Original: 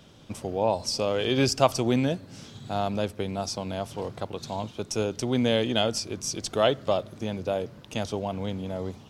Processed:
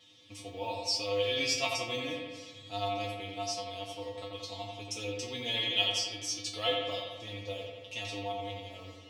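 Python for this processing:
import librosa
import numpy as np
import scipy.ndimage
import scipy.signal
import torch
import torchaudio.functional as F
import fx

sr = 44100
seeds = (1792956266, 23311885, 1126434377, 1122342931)

y = fx.weighting(x, sr, curve='D')
y = fx.mod_noise(y, sr, seeds[0], snr_db=35)
y = fx.vibrato(y, sr, rate_hz=9.8, depth_cents=17.0)
y = fx.notch(y, sr, hz=1500.0, q=5.7)
y = fx.comb_fb(y, sr, f0_hz=100.0, decay_s=0.26, harmonics='odd', damping=0.0, mix_pct=100)
y = fx.echo_bbd(y, sr, ms=87, stages=2048, feedback_pct=65, wet_db=-4.0)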